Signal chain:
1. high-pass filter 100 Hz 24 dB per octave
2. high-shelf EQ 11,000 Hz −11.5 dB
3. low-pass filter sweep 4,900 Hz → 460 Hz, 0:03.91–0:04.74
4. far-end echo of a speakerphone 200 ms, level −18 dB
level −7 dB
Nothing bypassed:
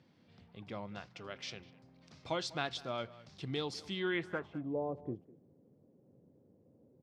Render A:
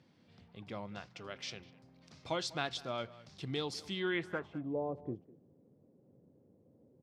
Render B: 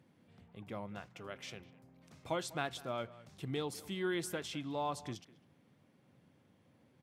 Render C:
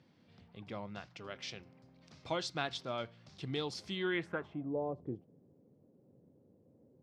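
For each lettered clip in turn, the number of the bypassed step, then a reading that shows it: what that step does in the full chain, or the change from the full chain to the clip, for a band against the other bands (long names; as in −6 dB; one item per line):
2, 8 kHz band +2.5 dB
3, 8 kHz band +6.0 dB
4, echo-to-direct ratio −19.0 dB to none audible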